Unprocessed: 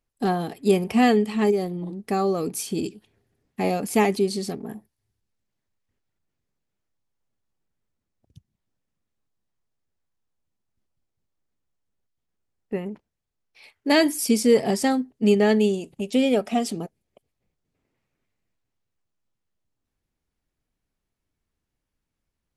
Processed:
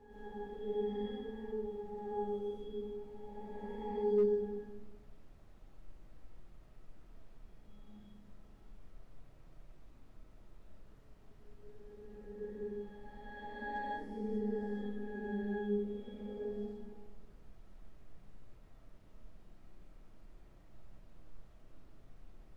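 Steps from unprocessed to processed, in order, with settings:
peak hold with a rise ahead of every peak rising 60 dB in 2.19 s
source passing by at 0:08.45, 16 m/s, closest 1.8 metres
high-pass filter 230 Hz 24 dB per octave
in parallel at −1.5 dB: brickwall limiter −46 dBFS, peak gain reduction 9 dB
on the sum: resonances in every octave G#, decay 0.29 s
background noise brown −77 dBFS
convolution reverb RT60 1.1 s, pre-delay 75 ms, DRR −8 dB
slew-rate limiting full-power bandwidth 5.9 Hz
level +12.5 dB

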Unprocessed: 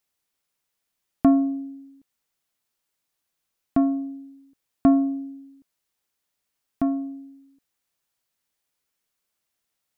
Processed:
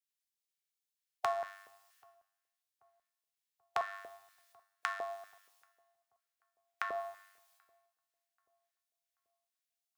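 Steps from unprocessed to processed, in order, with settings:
ceiling on every frequency bin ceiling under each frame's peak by 14 dB
inverse Chebyshev band-stop filter 210–510 Hz, stop band 40 dB
downward compressor 16 to 1, threshold −36 dBFS, peak gain reduction 18 dB
tuned comb filter 99 Hz, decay 1.7 s, harmonics all, mix 80%
auto-filter high-pass square 2.1 Hz 430–1,600 Hz
feedback echo with a low-pass in the loop 784 ms, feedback 74%, low-pass 1,300 Hz, level −19 dB
convolution reverb, pre-delay 3 ms, DRR 11.5 dB
multiband upward and downward expander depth 70%
level +10 dB

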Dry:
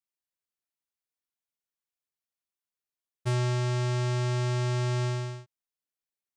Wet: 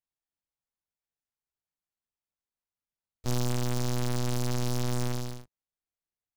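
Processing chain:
linear-prediction vocoder at 8 kHz pitch kept
short delay modulated by noise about 4,700 Hz, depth 0.11 ms

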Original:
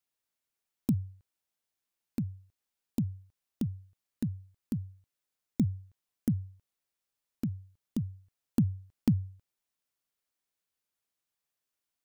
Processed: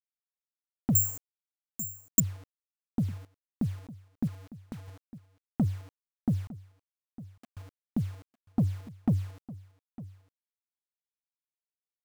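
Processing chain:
camcorder AGC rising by 5.6 dB per second
low-pass filter 1,500 Hz 12 dB per octave
0:04.27–0:04.88: downward compressor 16 to 1, threshold −41 dBFS, peak gain reduction 14.5 dB
0:06.47–0:07.57: first difference
bit reduction 9 bits
soft clipping −21.5 dBFS, distortion −14 dB
single-tap delay 905 ms −17.5 dB
0:00.95–0:02.20: bad sample-rate conversion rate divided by 6×, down filtered, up zero stuff
level +3 dB

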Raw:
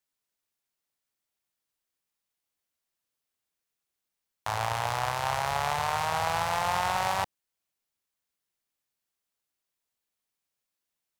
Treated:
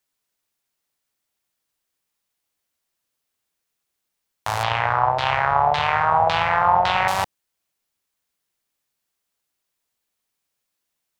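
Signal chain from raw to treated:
0:04.63–0:07.08: auto-filter low-pass saw down 1.8 Hz 650–4,000 Hz
level +6.5 dB

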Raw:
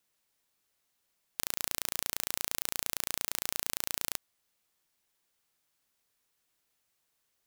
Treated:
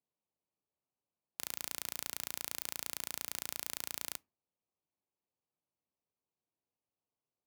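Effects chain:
adaptive Wiener filter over 25 samples
high-pass filter 65 Hz 24 dB per octave
notch filter 1,400 Hz, Q 9.5
on a send: convolution reverb RT60 0.25 s, pre-delay 4 ms, DRR 20 dB
on the sum: level −6 dB

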